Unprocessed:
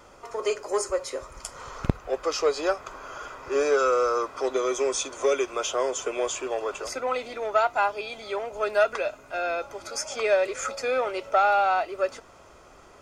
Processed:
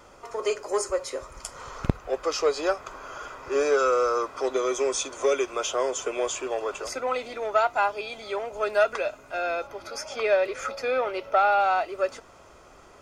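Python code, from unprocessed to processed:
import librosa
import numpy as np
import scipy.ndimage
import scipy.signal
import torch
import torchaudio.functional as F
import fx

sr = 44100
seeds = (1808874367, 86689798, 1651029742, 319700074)

y = fx.peak_eq(x, sr, hz=7700.0, db=-12.0, octaves=0.61, at=(9.67, 11.6))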